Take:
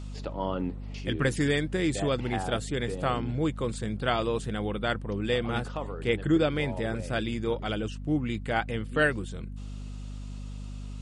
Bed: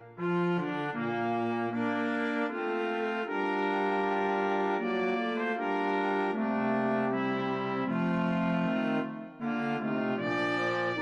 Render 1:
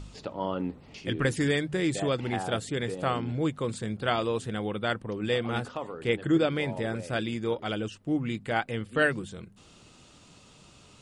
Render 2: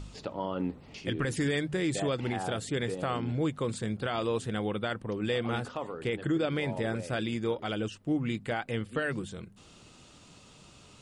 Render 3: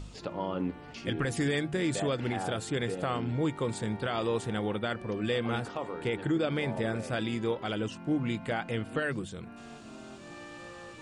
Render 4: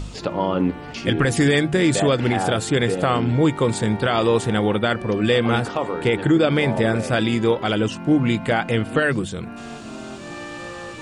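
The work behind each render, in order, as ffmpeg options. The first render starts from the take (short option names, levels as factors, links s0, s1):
-af "bandreject=f=50:t=h:w=4,bandreject=f=100:t=h:w=4,bandreject=f=150:t=h:w=4,bandreject=f=200:t=h:w=4,bandreject=f=250:t=h:w=4"
-af "alimiter=limit=0.0891:level=0:latency=1:release=72"
-filter_complex "[1:a]volume=0.15[s0];[0:a][s0]amix=inputs=2:normalize=0"
-af "volume=3.98"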